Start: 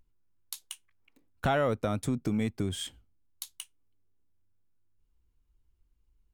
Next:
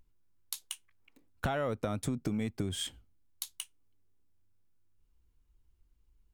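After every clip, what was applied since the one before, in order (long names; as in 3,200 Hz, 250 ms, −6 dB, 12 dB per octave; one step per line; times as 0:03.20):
downward compressor 6 to 1, threshold −31 dBFS, peak gain reduction 8.5 dB
level +1.5 dB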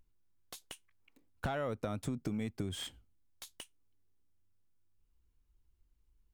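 slew-rate limiting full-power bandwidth 71 Hz
level −3.5 dB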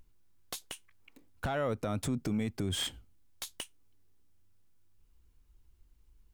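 brickwall limiter −32.5 dBFS, peak gain reduction 9 dB
level +8.5 dB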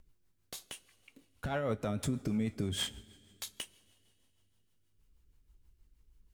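coupled-rooms reverb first 0.2 s, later 2.7 s, from −20 dB, DRR 9 dB
rotating-speaker cabinet horn 6.3 Hz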